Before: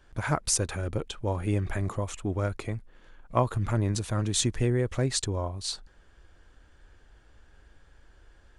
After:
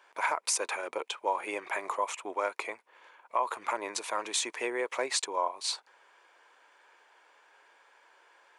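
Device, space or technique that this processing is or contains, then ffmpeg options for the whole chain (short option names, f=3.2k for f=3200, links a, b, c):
laptop speaker: -af "highpass=f=440:w=0.5412,highpass=f=440:w=1.3066,equalizer=f=970:t=o:w=0.47:g=11.5,equalizer=f=2.3k:t=o:w=0.45:g=9,alimiter=limit=-17.5dB:level=0:latency=1:release=92"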